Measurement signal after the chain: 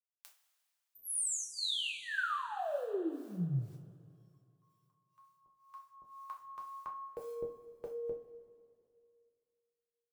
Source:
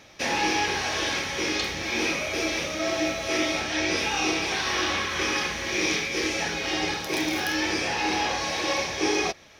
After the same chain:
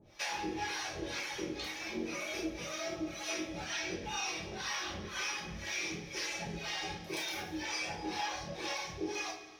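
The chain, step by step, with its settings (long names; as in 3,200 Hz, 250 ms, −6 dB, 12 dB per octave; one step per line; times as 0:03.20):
reverb reduction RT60 1.4 s
log-companded quantiser 8 bits
two-band tremolo in antiphase 2 Hz, depth 100%, crossover 590 Hz
downward compressor, threshold −32 dBFS
coupled-rooms reverb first 0.3 s, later 2.4 s, from −18 dB, DRR −1.5 dB
level −5.5 dB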